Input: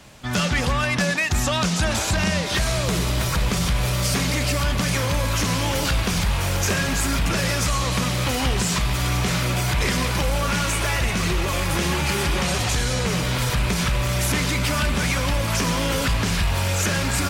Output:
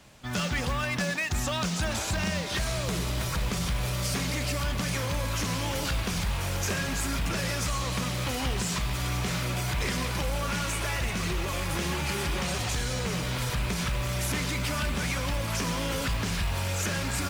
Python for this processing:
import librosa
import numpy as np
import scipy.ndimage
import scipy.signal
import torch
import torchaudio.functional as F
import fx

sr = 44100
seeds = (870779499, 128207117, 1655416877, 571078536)

y = fx.mod_noise(x, sr, seeds[0], snr_db=26)
y = y * 10.0 ** (-7.5 / 20.0)